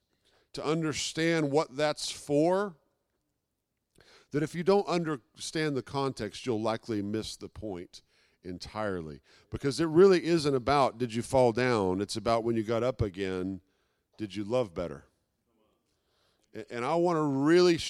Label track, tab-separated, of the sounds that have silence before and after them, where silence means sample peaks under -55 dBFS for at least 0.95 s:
3.950000	15.060000	sound